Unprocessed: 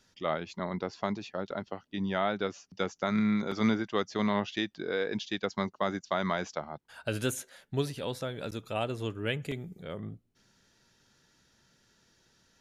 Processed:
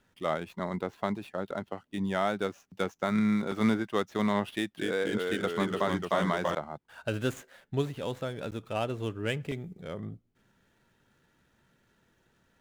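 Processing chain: median filter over 9 samples; 4.53–6.55 s: ever faster or slower copies 241 ms, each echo -1 st, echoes 3; trim +1 dB

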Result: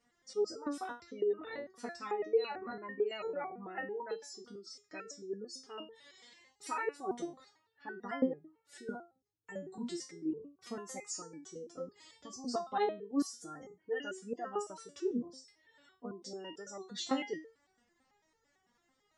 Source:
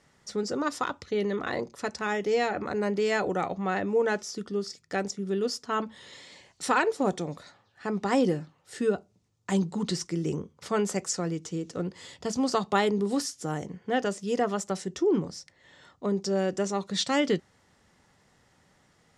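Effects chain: spectral gate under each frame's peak -25 dB strong; resonator arpeggio 9 Hz 240–450 Hz; trim +4 dB

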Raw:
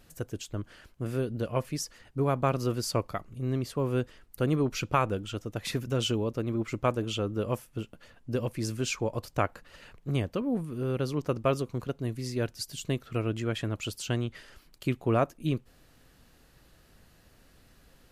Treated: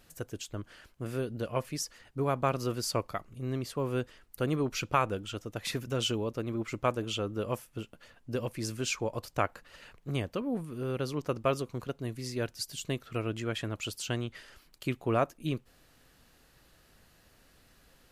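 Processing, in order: bass shelf 440 Hz -5 dB

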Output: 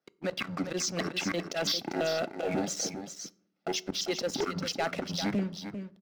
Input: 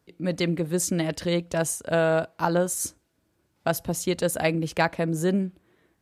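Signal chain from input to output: pitch shift switched off and on -10.5 st, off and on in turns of 334 ms; Chebyshev band-pass 170–5600 Hz, order 4; band-stop 990 Hz, Q 6.1; comb 1.5 ms, depth 37%; harmonic-percussive split harmonic -14 dB; slow attack 130 ms; waveshaping leveller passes 3; peak limiter -23.5 dBFS, peak gain reduction 7.5 dB; delay 397 ms -9 dB; on a send at -17.5 dB: reverberation RT60 0.70 s, pre-delay 3 ms

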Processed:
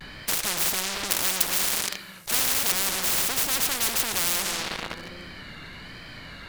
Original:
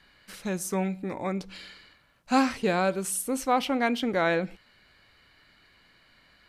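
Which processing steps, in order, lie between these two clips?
self-modulated delay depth 0.99 ms; bass shelf 230 Hz +9 dB; on a send: filtered feedback delay 234 ms, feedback 29%, low-pass 890 Hz, level -18 dB; on the sum: simulated room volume 1400 m³, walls mixed, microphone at 0.38 m; in parallel at -9.5 dB: fuzz box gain 38 dB, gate -44 dBFS; 1.11–2.72 s: on the sum: tilt EQ +4 dB/octave; vibrato 1.2 Hz 84 cents; spectrum-flattening compressor 10:1; trim -4 dB

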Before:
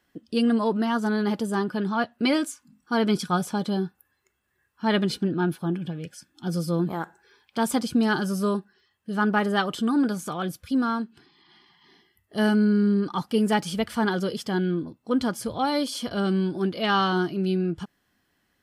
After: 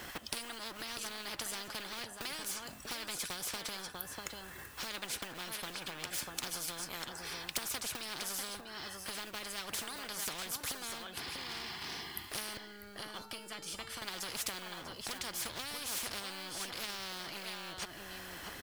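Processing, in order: companding laws mixed up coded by mu; compression 3:1, threshold -37 dBFS, peak gain reduction 14.5 dB; transient shaper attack +7 dB, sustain -2 dB; 12.57–14.02 s: feedback comb 450 Hz, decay 0.6 s, mix 80%; delay 644 ms -15.5 dB; spectrum-flattening compressor 10:1; trim +1 dB

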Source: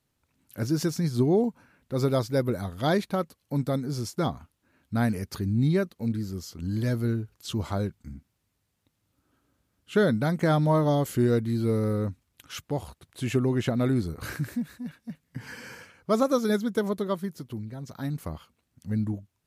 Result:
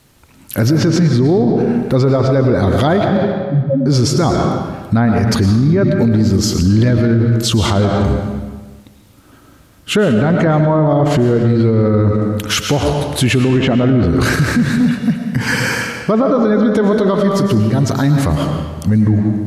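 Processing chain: low-pass that closes with the level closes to 1.8 kHz, closed at -20 dBFS; compression, threshold -27 dBFS, peak gain reduction 9 dB; 3.08–3.86 s: loudest bins only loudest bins 1; reverberation RT60 1.4 s, pre-delay 70 ms, DRR 5 dB; loudness maximiser +29.5 dB; trim -4.5 dB

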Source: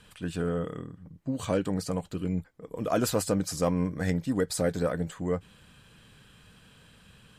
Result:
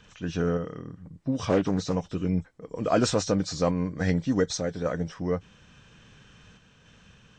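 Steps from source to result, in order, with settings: knee-point frequency compression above 2.9 kHz 1.5:1; random-step tremolo; 1.49–1.96 s: loudspeaker Doppler distortion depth 0.32 ms; trim +4 dB

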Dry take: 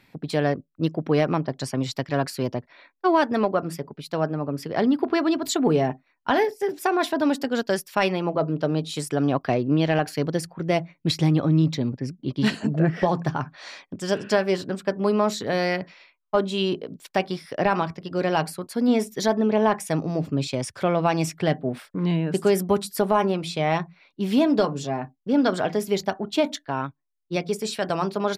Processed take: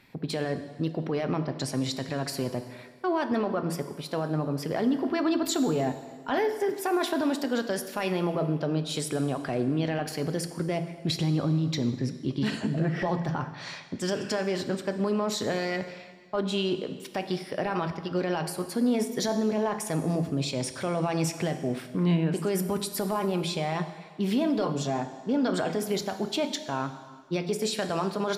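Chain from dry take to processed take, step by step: peak limiter -19 dBFS, peak gain reduction 10 dB; plate-style reverb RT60 1.6 s, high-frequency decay 0.95×, DRR 8.5 dB

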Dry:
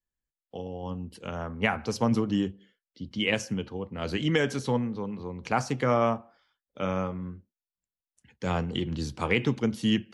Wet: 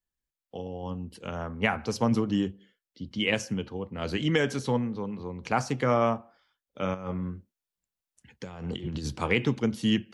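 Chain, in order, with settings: 6.94–9.19 s: compressor with a negative ratio -33 dBFS, ratio -0.5

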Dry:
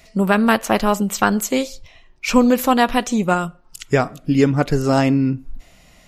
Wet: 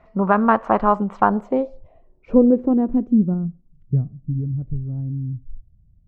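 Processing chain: low-pass sweep 1.1 kHz -> 100 Hz, 1.07–4.53 s; trim -3 dB

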